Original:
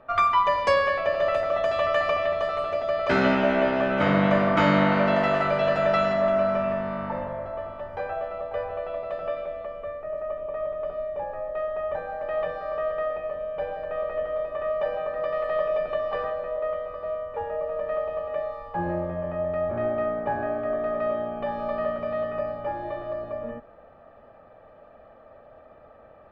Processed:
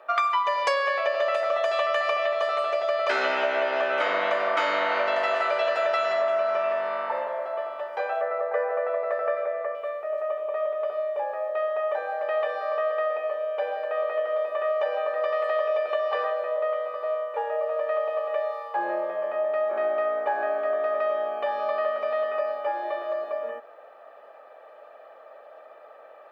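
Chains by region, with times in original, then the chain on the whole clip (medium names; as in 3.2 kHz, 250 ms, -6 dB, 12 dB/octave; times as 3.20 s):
8.21–9.75 s: resonant high shelf 2.4 kHz -8 dB, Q 3 + small resonant body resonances 200/470 Hz, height 8 dB
whole clip: high-pass 410 Hz 24 dB/octave; tilt EQ +1.5 dB/octave; compression, threshold -25 dBFS; trim +4 dB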